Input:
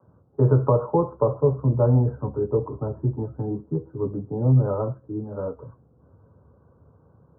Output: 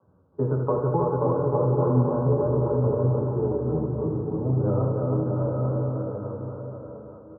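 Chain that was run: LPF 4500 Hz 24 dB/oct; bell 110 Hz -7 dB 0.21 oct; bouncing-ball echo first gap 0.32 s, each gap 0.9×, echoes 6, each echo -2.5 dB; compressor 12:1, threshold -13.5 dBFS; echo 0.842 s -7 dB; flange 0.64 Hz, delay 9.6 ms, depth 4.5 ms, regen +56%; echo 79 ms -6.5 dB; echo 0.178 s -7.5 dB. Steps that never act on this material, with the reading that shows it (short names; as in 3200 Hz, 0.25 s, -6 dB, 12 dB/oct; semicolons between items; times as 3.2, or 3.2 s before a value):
LPF 4500 Hz: input band ends at 680 Hz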